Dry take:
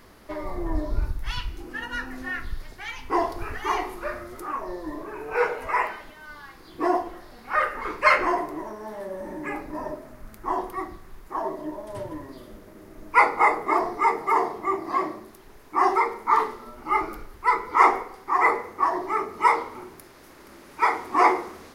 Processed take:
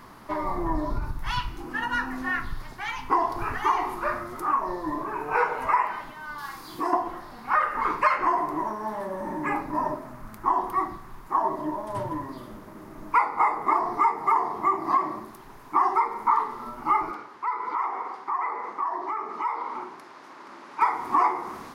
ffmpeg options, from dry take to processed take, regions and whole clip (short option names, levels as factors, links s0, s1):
-filter_complex "[0:a]asettb=1/sr,asplit=3[s0][s1][s2];[s0]atrim=end=6.384[s3];[s1]atrim=start=6.38:end=6.93,asetpts=PTS-STARTPTS,afade=t=in:d=0.004:c=qsin,afade=t=out:st=0.546:d=0.004:c=qsin,bass=f=250:g=-2,treble=f=4000:g=11,asplit=2[s4][s5];[s5]adelay=48,volume=0.562[s6];[s4][s6]amix=inputs=2:normalize=0,atrim=end_sample=24255,acompressor=threshold=0.0224:ratio=2.5:attack=3.2:release=140:knee=1:detection=peak[s7];[s2]atrim=start=6.926[s8];[s3][s7]acrossfade=d=0.004:c1=hsin:c2=qsin[s9];[s9][s8]acrossfade=d=0.004:c1=qsin:c2=hsin,asettb=1/sr,asplit=3[s10][s11][s12];[s10]atrim=end=17.114[s13];[s11]atrim=start=17.11:end=20.81,asetpts=PTS-STARTPTS,afade=t=in:d=0.004:c=qsin,afade=t=out:st=3.696:d=0.004:c=qsin,highpass=310,lowpass=5600,acompressor=threshold=0.02:ratio=6:attack=3.2:release=140:knee=1:detection=peak[s14];[s12]atrim=start=20.806[s15];[s13][s14]acrossfade=d=0.004:c1=hsin:c2=qsin[s16];[s16][s15]acrossfade=d=0.004:c1=qsin:c2=hsin,equalizer=f=125:t=o:w=1:g=11,equalizer=f=250:t=o:w=1:g=4,equalizer=f=500:t=o:w=1:g=-4,equalizer=f=1000:t=o:w=1:g=11,acompressor=threshold=0.112:ratio=6,equalizer=f=79:w=0.71:g=-7"